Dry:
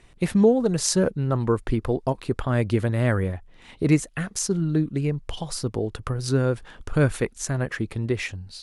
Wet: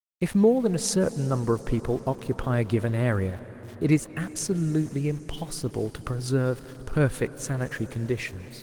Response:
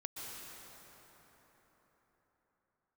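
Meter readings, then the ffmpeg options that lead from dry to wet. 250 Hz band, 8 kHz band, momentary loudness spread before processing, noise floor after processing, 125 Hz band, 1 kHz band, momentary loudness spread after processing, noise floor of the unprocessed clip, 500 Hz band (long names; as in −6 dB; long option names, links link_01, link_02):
−2.0 dB, −3.5 dB, 8 LU, −44 dBFS, −2.5 dB, −2.5 dB, 8 LU, −52 dBFS, −2.0 dB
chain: -filter_complex "[0:a]aeval=exprs='val(0)*gte(abs(val(0)),0.00944)':channel_layout=same,asplit=2[link_01][link_02];[1:a]atrim=start_sample=2205,asetrate=29988,aresample=44100,lowshelf=frequency=190:gain=-3.5[link_03];[link_02][link_03]afir=irnorm=-1:irlink=0,volume=-13.5dB[link_04];[link_01][link_04]amix=inputs=2:normalize=0,volume=-3dB" -ar 48000 -c:a libopus -b:a 24k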